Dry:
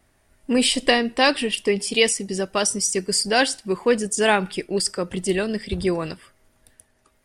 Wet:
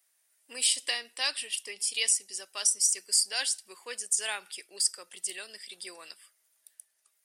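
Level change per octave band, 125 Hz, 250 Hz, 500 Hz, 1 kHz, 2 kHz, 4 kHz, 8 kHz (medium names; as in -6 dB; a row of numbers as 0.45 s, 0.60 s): under -40 dB, under -30 dB, -25.5 dB, -19.5 dB, -12.5 dB, -7.0 dB, -1.0 dB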